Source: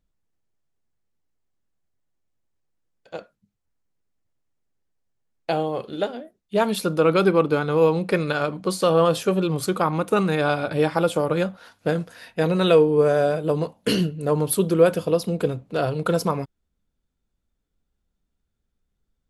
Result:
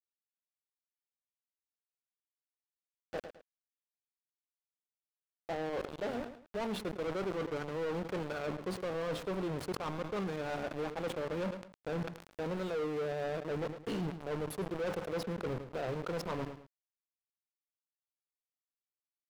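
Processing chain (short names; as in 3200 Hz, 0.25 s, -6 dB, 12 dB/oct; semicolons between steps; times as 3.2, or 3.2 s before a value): HPF 250 Hz 6 dB/oct; reverse; compressor 12:1, threshold -30 dBFS, peak gain reduction 19 dB; reverse; sample gate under -36 dBFS; LPF 1000 Hz 6 dB/oct; soft clip -38 dBFS, distortion -8 dB; on a send: feedback echo 0.108 s, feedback 18%, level -21 dB; on the sum: sustainer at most 100 dB/s; gain +6 dB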